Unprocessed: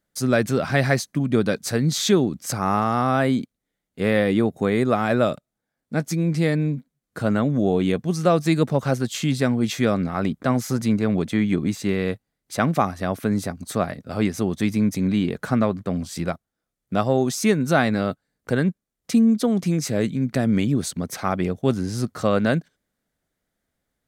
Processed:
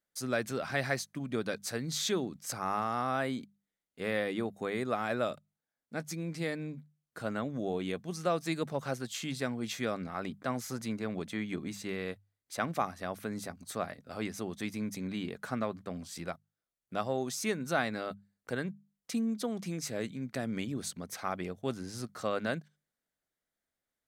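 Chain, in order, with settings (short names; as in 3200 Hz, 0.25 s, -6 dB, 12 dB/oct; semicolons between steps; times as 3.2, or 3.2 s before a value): low shelf 400 Hz -8.5 dB; notches 50/100/150/200 Hz; gain -9 dB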